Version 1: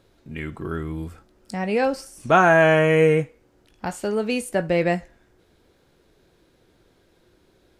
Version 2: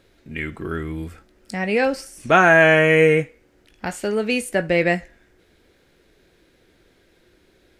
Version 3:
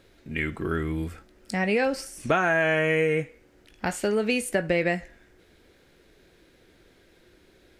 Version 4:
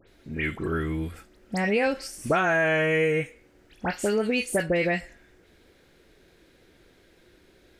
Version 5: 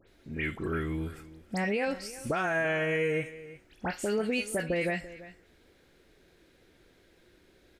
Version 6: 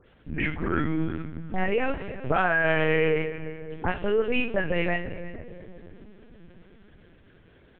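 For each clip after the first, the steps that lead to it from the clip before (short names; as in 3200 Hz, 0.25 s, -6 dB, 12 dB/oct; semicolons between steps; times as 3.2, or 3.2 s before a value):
graphic EQ 125/1000/2000 Hz -4/-5/+6 dB; gain +2.5 dB
compressor 6:1, threshold -20 dBFS, peak gain reduction 10.5 dB
dispersion highs, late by 78 ms, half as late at 2500 Hz
limiter -17 dBFS, peak gain reduction 4.5 dB; echo 0.34 s -17 dB; gain -4 dB
reverb RT60 3.5 s, pre-delay 3 ms, DRR 8.5 dB; LPC vocoder at 8 kHz pitch kept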